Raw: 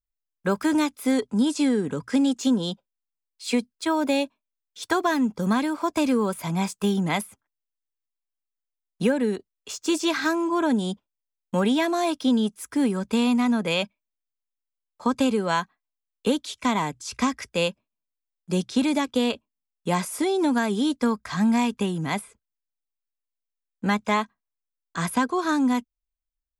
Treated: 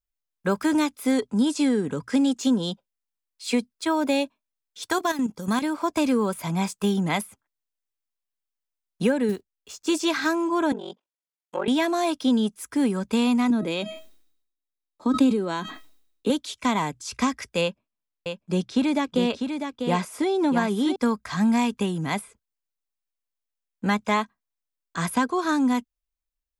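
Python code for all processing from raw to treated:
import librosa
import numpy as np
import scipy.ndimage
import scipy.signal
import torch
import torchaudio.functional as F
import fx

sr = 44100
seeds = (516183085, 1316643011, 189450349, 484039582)

y = fx.chain(x, sr, fx.high_shelf(hz=4500.0, db=9.5),
    fx.level_steps(step_db=11), at=(4.9, 5.62))
y = fx.chain(y, sr, fx.block_float(bits=5),
    fx.low_shelf(hz=140.0, db=8.0),
    fx.upward_expand(threshold_db=-39.0, expansion=1.5), at=(9.29, 9.87))
y = fx.chain(y, sr, fx.env_lowpass_down(base_hz=2400.0, full_db=-20.5),
    fx.highpass(hz=310.0, slope=24),
    fx.ring_mod(carrier_hz=23.0), at=(10.72, 11.68))
y = fx.chain(y, sr, fx.comb_fb(f0_hz=640.0, decay_s=0.24, harmonics='all', damping=0.0, mix_pct=60),
    fx.small_body(hz=(300.0, 3800.0), ring_ms=30, db=15),
    fx.sustainer(db_per_s=74.0), at=(13.5, 16.3))
y = fx.chain(y, sr, fx.lowpass(hz=3900.0, slope=6),
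    fx.echo_single(ms=648, db=-6.5), at=(17.61, 20.96))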